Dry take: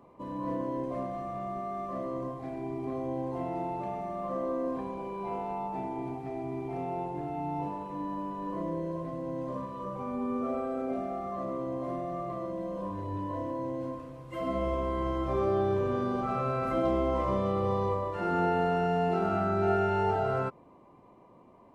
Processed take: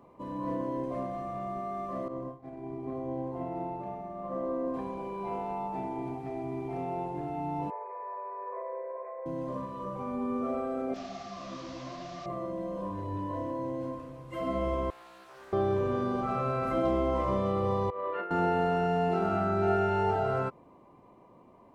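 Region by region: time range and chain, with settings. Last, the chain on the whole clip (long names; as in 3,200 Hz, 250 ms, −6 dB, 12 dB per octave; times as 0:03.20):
0:02.08–0:04.74: downward expander −33 dBFS + high-shelf EQ 2,300 Hz −9.5 dB
0:07.70–0:09.26: linear-phase brick-wall band-pass 370–2,500 Hz + notch filter 1,400 Hz, Q 7.5
0:10.94–0:12.26: linear delta modulator 32 kbit/s, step −36.5 dBFS + parametric band 440 Hz −10 dB 0.89 octaves + micro pitch shift up and down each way 45 cents
0:14.90–0:15.53: first difference + highs frequency-modulated by the lows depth 0.54 ms
0:17.90–0:18.31: compressor whose output falls as the input rises −33 dBFS, ratio −0.5 + loudspeaker in its box 430–3,100 Hz, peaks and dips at 460 Hz +4 dB, 820 Hz −9 dB, 1,300 Hz +5 dB
whole clip: no processing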